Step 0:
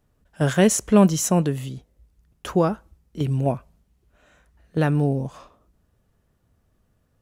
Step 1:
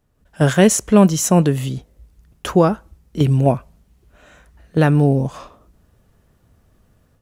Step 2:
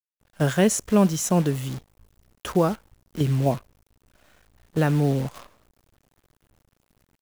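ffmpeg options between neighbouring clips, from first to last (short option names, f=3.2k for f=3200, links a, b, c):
-af "dynaudnorm=f=140:g=3:m=9.5dB"
-af "acrusher=bits=6:dc=4:mix=0:aa=0.000001,volume=-7dB"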